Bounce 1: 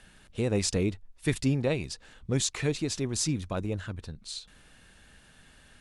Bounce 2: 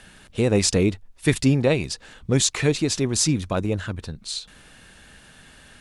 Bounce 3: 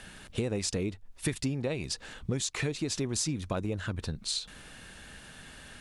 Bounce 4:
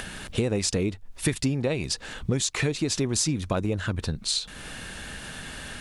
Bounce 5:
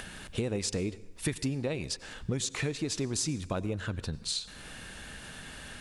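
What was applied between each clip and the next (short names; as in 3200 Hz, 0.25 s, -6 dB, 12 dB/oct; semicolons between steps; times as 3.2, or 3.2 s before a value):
low shelf 72 Hz -5.5 dB; gain +8.5 dB
compressor 10:1, threshold -28 dBFS, peak gain reduction 15 dB
upward compressor, threshold -37 dBFS; gain +6 dB
plate-style reverb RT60 0.89 s, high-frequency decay 0.85×, pre-delay 80 ms, DRR 18.5 dB; gain -6.5 dB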